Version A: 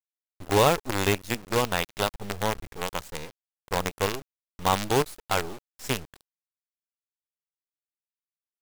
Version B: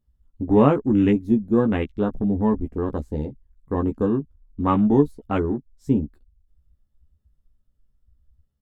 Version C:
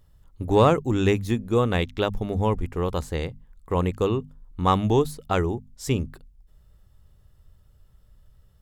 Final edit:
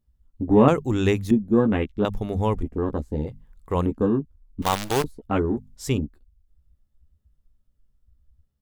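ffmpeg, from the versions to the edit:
-filter_complex "[2:a]asplit=4[a][b][c][d];[1:a]asplit=6[e][f][g][h][i][j];[e]atrim=end=0.682[k];[a]atrim=start=0.678:end=1.312[l];[f]atrim=start=1.308:end=2.052[m];[b]atrim=start=2.048:end=2.632[n];[g]atrim=start=2.628:end=3.272[o];[c]atrim=start=3.268:end=3.862[p];[h]atrim=start=3.858:end=4.622[q];[0:a]atrim=start=4.618:end=5.042[r];[i]atrim=start=5.038:end=5.572[s];[d]atrim=start=5.568:end=5.982[t];[j]atrim=start=5.978[u];[k][l]acrossfade=d=0.004:c1=hsin:c2=hsin[v];[v][m]acrossfade=d=0.004:c1=hsin:c2=hsin[w];[w][n]acrossfade=d=0.004:c1=hsin:c2=hsin[x];[x][o]acrossfade=d=0.004:c1=hsin:c2=hsin[y];[y][p]acrossfade=d=0.004:c1=hsin:c2=hsin[z];[z][q]acrossfade=d=0.004:c1=hsin:c2=hsin[aa];[aa][r]acrossfade=d=0.004:c1=hsin:c2=hsin[ab];[ab][s]acrossfade=d=0.004:c1=hsin:c2=hsin[ac];[ac][t]acrossfade=d=0.004:c1=hsin:c2=hsin[ad];[ad][u]acrossfade=d=0.004:c1=hsin:c2=hsin"

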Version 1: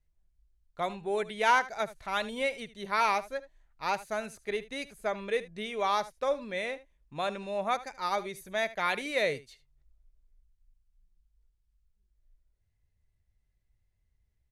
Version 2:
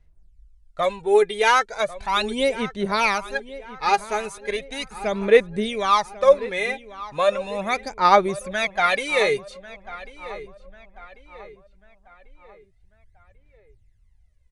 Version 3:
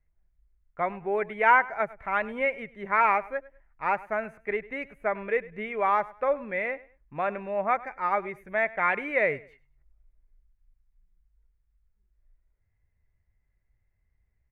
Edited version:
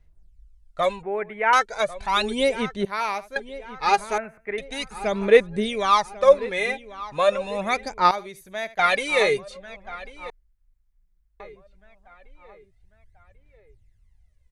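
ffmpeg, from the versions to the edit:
-filter_complex "[2:a]asplit=3[a][b][c];[0:a]asplit=2[d][e];[1:a]asplit=6[f][g][h][i][j][k];[f]atrim=end=1.032[l];[a]atrim=start=1.028:end=1.532[m];[g]atrim=start=1.528:end=2.852[n];[d]atrim=start=2.848:end=3.362[o];[h]atrim=start=3.358:end=4.182[p];[b]atrim=start=4.178:end=4.582[q];[i]atrim=start=4.578:end=8.112[r];[e]atrim=start=8.108:end=8.792[s];[j]atrim=start=8.788:end=10.302[t];[c]atrim=start=10.298:end=11.402[u];[k]atrim=start=11.398[v];[l][m]acrossfade=d=0.004:c1=hsin:c2=hsin[w];[w][n]acrossfade=d=0.004:c1=hsin:c2=hsin[x];[x][o]acrossfade=d=0.004:c1=hsin:c2=hsin[y];[y][p]acrossfade=d=0.004:c1=hsin:c2=hsin[z];[z][q]acrossfade=d=0.004:c1=hsin:c2=hsin[aa];[aa][r]acrossfade=d=0.004:c1=hsin:c2=hsin[ab];[ab][s]acrossfade=d=0.004:c1=hsin:c2=hsin[ac];[ac][t]acrossfade=d=0.004:c1=hsin:c2=hsin[ad];[ad][u]acrossfade=d=0.004:c1=hsin:c2=hsin[ae];[ae][v]acrossfade=d=0.004:c1=hsin:c2=hsin"

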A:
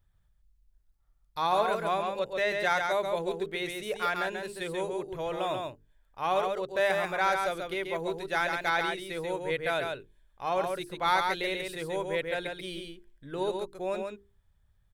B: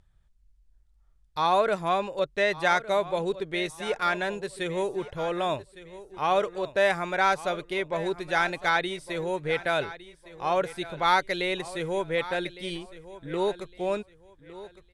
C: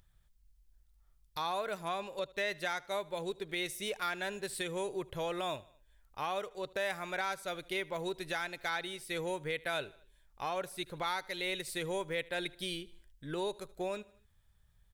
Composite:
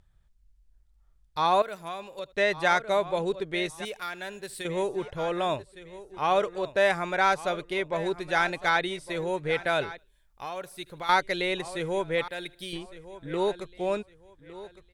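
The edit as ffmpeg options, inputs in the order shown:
-filter_complex "[2:a]asplit=4[a][b][c][d];[1:a]asplit=5[e][f][g][h][i];[e]atrim=end=1.622[j];[a]atrim=start=1.618:end=2.332[k];[f]atrim=start=2.328:end=3.852[l];[b]atrim=start=3.848:end=4.652[m];[g]atrim=start=4.648:end=9.982[n];[c]atrim=start=9.978:end=11.092[o];[h]atrim=start=11.088:end=12.282[p];[d]atrim=start=12.278:end=12.732[q];[i]atrim=start=12.728[r];[j][k]acrossfade=d=0.004:c1=hsin:c2=hsin[s];[s][l]acrossfade=d=0.004:c1=hsin:c2=hsin[t];[t][m]acrossfade=d=0.004:c1=hsin:c2=hsin[u];[u][n]acrossfade=d=0.004:c1=hsin:c2=hsin[v];[v][o]acrossfade=d=0.004:c1=hsin:c2=hsin[w];[w][p]acrossfade=d=0.004:c1=hsin:c2=hsin[x];[x][q]acrossfade=d=0.004:c1=hsin:c2=hsin[y];[y][r]acrossfade=d=0.004:c1=hsin:c2=hsin"

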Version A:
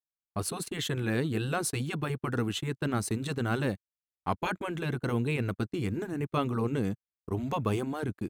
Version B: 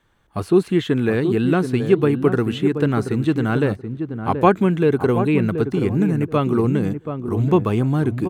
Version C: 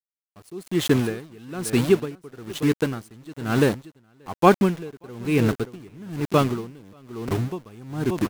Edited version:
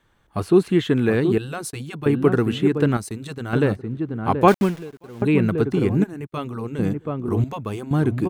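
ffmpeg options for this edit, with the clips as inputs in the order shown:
-filter_complex "[0:a]asplit=4[a][b][c][d];[1:a]asplit=6[e][f][g][h][i][j];[e]atrim=end=1.382[k];[a]atrim=start=1.378:end=2.062[l];[f]atrim=start=2.058:end=2.972[m];[b]atrim=start=2.968:end=3.532[n];[g]atrim=start=3.528:end=4.482[o];[2:a]atrim=start=4.478:end=5.222[p];[h]atrim=start=5.218:end=6.042[q];[c]atrim=start=6.038:end=6.792[r];[i]atrim=start=6.788:end=7.442[s];[d]atrim=start=7.438:end=7.912[t];[j]atrim=start=7.908[u];[k][l]acrossfade=d=0.004:c1=hsin:c2=hsin[v];[v][m]acrossfade=d=0.004:c1=hsin:c2=hsin[w];[w][n]acrossfade=d=0.004:c1=hsin:c2=hsin[x];[x][o]acrossfade=d=0.004:c1=hsin:c2=hsin[y];[y][p]acrossfade=d=0.004:c1=hsin:c2=hsin[z];[z][q]acrossfade=d=0.004:c1=hsin:c2=hsin[aa];[aa][r]acrossfade=d=0.004:c1=hsin:c2=hsin[ab];[ab][s]acrossfade=d=0.004:c1=hsin:c2=hsin[ac];[ac][t]acrossfade=d=0.004:c1=hsin:c2=hsin[ad];[ad][u]acrossfade=d=0.004:c1=hsin:c2=hsin"

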